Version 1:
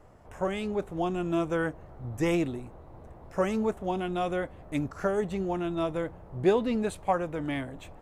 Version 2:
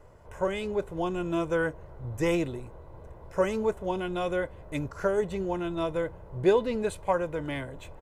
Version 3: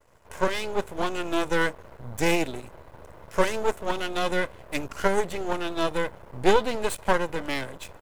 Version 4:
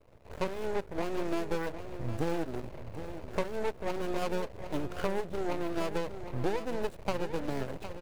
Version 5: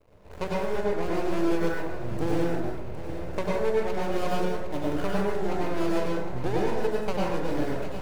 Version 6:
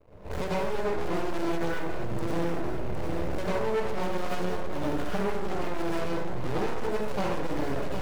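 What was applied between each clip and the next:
comb filter 2 ms, depth 45%
spectral tilt +2 dB per octave; half-wave rectification; downward expander −54 dBFS; level +8.5 dB
running median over 41 samples; downward compressor 6 to 1, threshold −31 dBFS, peak gain reduction 16.5 dB; on a send: single-tap delay 760 ms −11 dB; on the sum: level +3.5 dB
dense smooth reverb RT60 0.88 s, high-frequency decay 0.55×, pre-delay 85 ms, DRR −4 dB
camcorder AGC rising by 28 dB per second; hard clipping −25.5 dBFS, distortion −9 dB; one half of a high-frequency compander decoder only; level +2 dB

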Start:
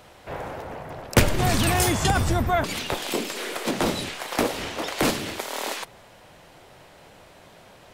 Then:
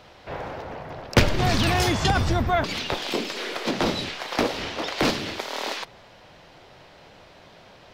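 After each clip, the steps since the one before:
high shelf with overshoot 6,700 Hz −10 dB, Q 1.5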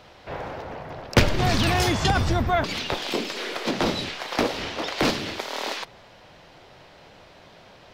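no processing that can be heard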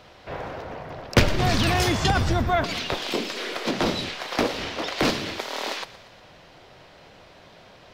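notch filter 860 Hz, Q 25
feedback echo with a high-pass in the loop 117 ms, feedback 56%, level −17 dB

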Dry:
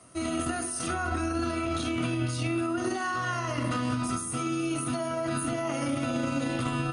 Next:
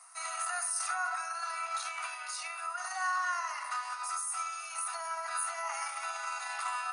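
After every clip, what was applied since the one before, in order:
Butterworth high-pass 760 Hz 72 dB per octave
parametric band 3,200 Hz −14.5 dB 0.41 octaves
speech leveller 2 s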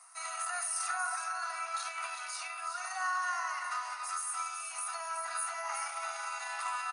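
single-tap delay 373 ms −7 dB
level −1.5 dB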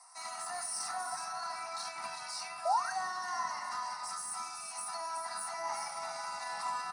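in parallel at −2.5 dB: soft clipping −38 dBFS, distortion −9 dB
on the sum: sound drawn into the spectrogram rise, 0:02.65–0:02.91, 620–1,700 Hz −29 dBFS
convolution reverb RT60 0.20 s, pre-delay 3 ms, DRR 7 dB
level −7.5 dB

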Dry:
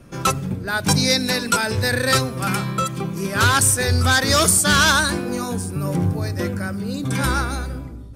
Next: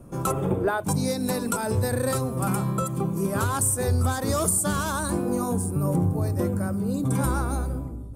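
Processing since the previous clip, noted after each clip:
gain on a spectral selection 0:00.31–0:00.83, 290–3,700 Hz +12 dB
downward compressor 10 to 1, threshold −18 dBFS, peak gain reduction 12.5 dB
flat-topped bell 3,000 Hz −13.5 dB 2.3 octaves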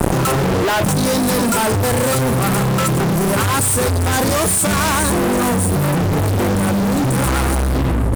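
fuzz pedal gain 44 dB, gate −43 dBFS
envelope flattener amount 100%
level −2.5 dB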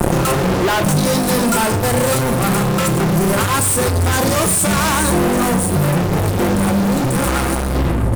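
rectangular room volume 620 cubic metres, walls furnished, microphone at 0.88 metres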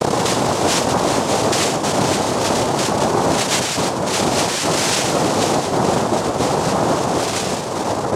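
cochlear-implant simulation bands 2
level −1.5 dB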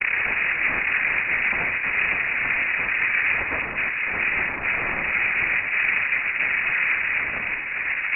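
voice inversion scrambler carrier 2,700 Hz
level −5 dB

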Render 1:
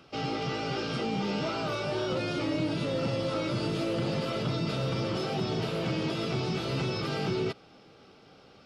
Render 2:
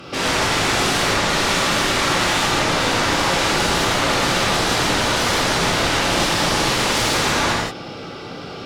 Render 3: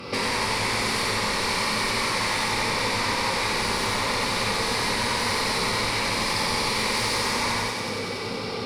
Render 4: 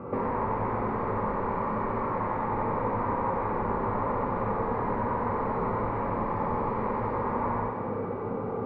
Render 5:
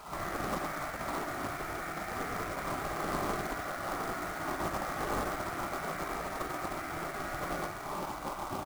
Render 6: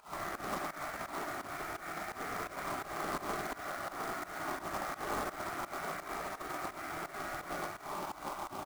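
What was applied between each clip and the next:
sine wavefolder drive 12 dB, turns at −22.5 dBFS; reverb whose tail is shaped and stops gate 210 ms flat, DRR −6 dB
downward compressor 6 to 1, threshold −25 dBFS, peak gain reduction 10 dB; EQ curve with evenly spaced ripples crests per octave 0.91, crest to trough 9 dB; feedback echo with a high-pass in the loop 93 ms, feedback 84%, high-pass 630 Hz, level −5.5 dB
low-pass filter 1,200 Hz 24 dB per octave
ambience of single reflections 48 ms −5.5 dB, 68 ms −6.5 dB; gate on every frequency bin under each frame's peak −10 dB weak; log-companded quantiser 4 bits
low-shelf EQ 210 Hz −8 dB; notch filter 510 Hz, Q 14; fake sidechain pumping 85 BPM, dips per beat 2, −16 dB, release 178 ms; level −1.5 dB

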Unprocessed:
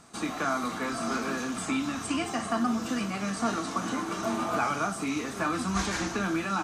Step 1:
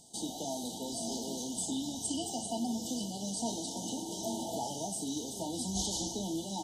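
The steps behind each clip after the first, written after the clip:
brick-wall band-stop 950–2,900 Hz
high-shelf EQ 3,400 Hz +11 dB
level −6.5 dB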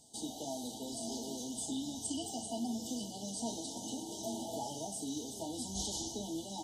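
notch comb filter 180 Hz
level −2.5 dB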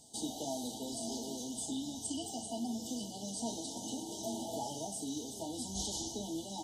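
speech leveller 2 s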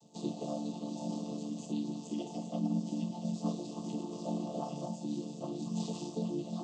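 channel vocoder with a chord as carrier minor triad, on D3
level +4 dB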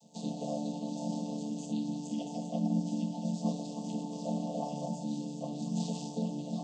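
phaser with its sweep stopped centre 360 Hz, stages 6
delay with a low-pass on its return 75 ms, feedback 69%, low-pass 2,900 Hz, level −12.5 dB
on a send at −17.5 dB: convolution reverb RT60 0.40 s, pre-delay 4 ms
on the sum: level +3 dB

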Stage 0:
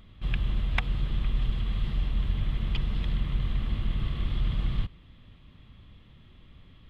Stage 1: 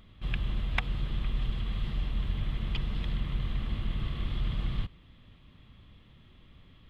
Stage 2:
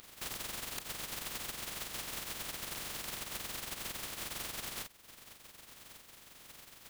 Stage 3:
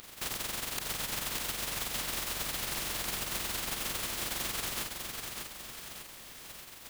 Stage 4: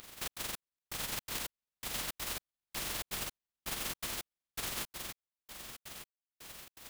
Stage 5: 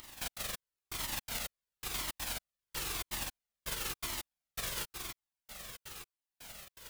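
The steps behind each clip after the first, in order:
low-shelf EQ 150 Hz −3 dB; level −1 dB
compressing power law on the bin magnitudes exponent 0.13; amplitude modulation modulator 22 Hz, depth 35%; downward compressor 4 to 1, threshold −43 dBFS, peak gain reduction 15 dB; level +2 dB
feedback echo at a low word length 599 ms, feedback 55%, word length 10 bits, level −4.5 dB; level +5 dB
gate pattern "xxx.xx...." 164 BPM −60 dB; level −2.5 dB
flanger whose copies keep moving one way falling 0.97 Hz; level +4.5 dB

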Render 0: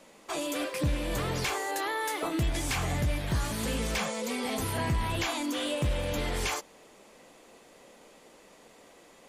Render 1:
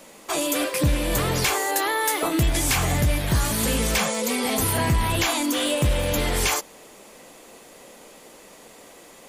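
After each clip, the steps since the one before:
high-shelf EQ 9,700 Hz +12 dB
level +7.5 dB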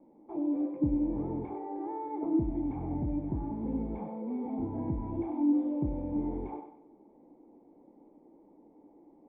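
formant resonators in series u
feedback echo with a high-pass in the loop 96 ms, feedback 39%, high-pass 300 Hz, level −7 dB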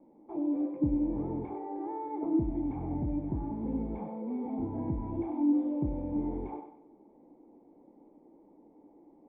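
no processing that can be heard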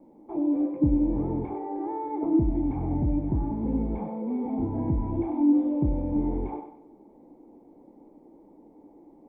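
low-shelf EQ 100 Hz +6 dB
level +5 dB

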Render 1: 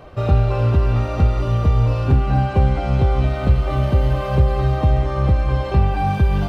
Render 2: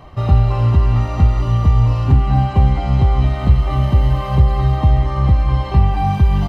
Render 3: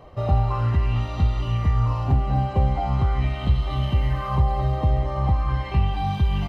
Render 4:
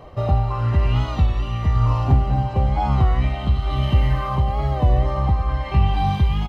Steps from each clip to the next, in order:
comb filter 1 ms, depth 53%
auto-filter bell 0.41 Hz 490–3,600 Hz +10 dB; level −8 dB
amplitude tremolo 1 Hz, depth 40%; single-tap delay 554 ms −12.5 dB; wow of a warped record 33 1/3 rpm, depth 100 cents; level +4.5 dB

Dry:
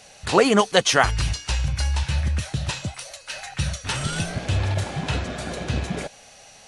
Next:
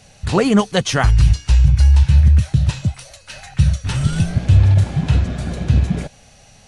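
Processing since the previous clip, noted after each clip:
bass and treble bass +15 dB, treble 0 dB
level −2 dB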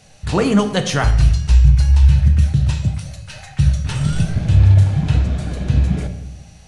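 rectangular room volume 270 cubic metres, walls mixed, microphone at 0.52 metres
level −2 dB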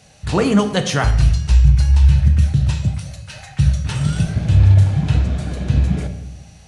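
high-pass filter 42 Hz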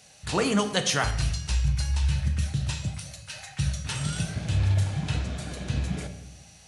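spectral tilt +2 dB per octave
level −6 dB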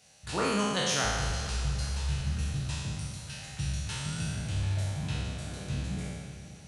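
peak hold with a decay on every bin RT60 1.71 s
feedback delay with all-pass diffusion 504 ms, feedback 57%, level −14.5 dB
level −8.5 dB

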